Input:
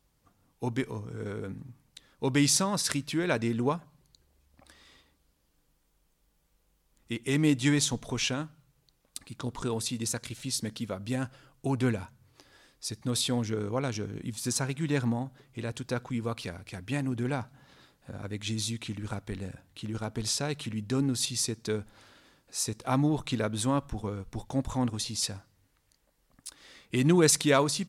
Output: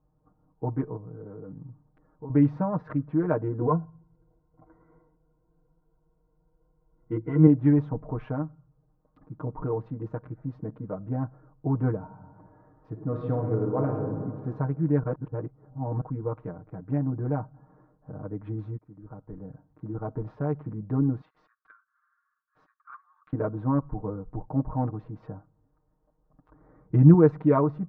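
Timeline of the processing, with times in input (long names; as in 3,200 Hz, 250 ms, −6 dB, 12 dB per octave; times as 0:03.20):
0:00.96–0:02.30: downward compressor 3 to 1, threshold −42 dBFS
0:03.60–0:07.47: EQ curve with evenly spaced ripples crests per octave 1.9, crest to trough 16 dB
0:11.98–0:14.09: thrown reverb, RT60 2 s, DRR 1.5 dB
0:15.03–0:16.01: reverse
0:18.78–0:20.05: fade in, from −20 dB
0:21.21–0:23.33: Chebyshev high-pass with heavy ripple 1,100 Hz, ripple 6 dB
0:26.48–0:27.14: parametric band 74 Hz +11.5 dB 2.4 octaves
whole clip: adaptive Wiener filter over 15 samples; low-pass filter 1,200 Hz 24 dB per octave; comb filter 6.5 ms, depth 100%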